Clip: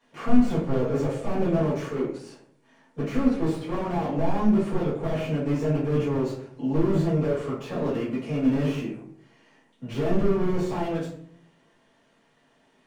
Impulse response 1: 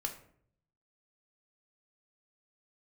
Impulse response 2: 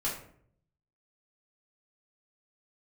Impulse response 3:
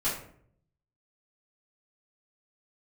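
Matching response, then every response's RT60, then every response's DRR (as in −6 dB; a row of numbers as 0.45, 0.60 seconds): 3; 0.60, 0.60, 0.60 seconds; 3.5, −6.5, −10.5 decibels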